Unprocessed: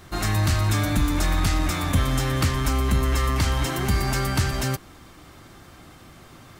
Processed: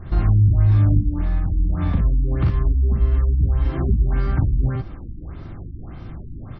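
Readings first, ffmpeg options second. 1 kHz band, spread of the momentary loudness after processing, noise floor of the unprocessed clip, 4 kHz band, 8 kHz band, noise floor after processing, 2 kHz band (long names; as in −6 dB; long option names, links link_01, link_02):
−9.0 dB, 21 LU, −48 dBFS, below −20 dB, below −40 dB, −36 dBFS, −12.0 dB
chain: -filter_complex "[0:a]acrossover=split=4700[link_01][link_02];[link_02]acompressor=threshold=-46dB:ratio=4:attack=1:release=60[link_03];[link_01][link_03]amix=inputs=2:normalize=0,aemphasis=mode=reproduction:type=riaa,acompressor=threshold=-17dB:ratio=10,aecho=1:1:40|58:0.631|0.668,afftfilt=real='re*lt(b*sr/1024,330*pow(6200/330,0.5+0.5*sin(2*PI*1.7*pts/sr)))':imag='im*lt(b*sr/1024,330*pow(6200/330,0.5+0.5*sin(2*PI*1.7*pts/sr)))':win_size=1024:overlap=0.75"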